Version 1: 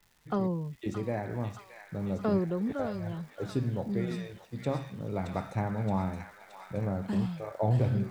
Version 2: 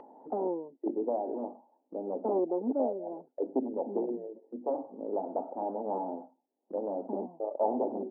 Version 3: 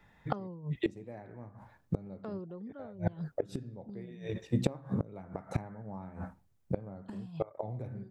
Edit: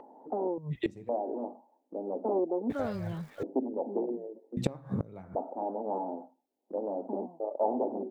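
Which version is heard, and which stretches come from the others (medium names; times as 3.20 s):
2
0.58–1.09 s: from 3
2.70–3.43 s: from 1
4.57–5.35 s: from 3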